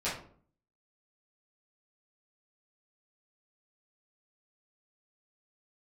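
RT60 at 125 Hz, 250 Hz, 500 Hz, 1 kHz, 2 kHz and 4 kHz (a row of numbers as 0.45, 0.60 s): 0.70, 0.70, 0.55, 0.45, 0.35, 0.30 s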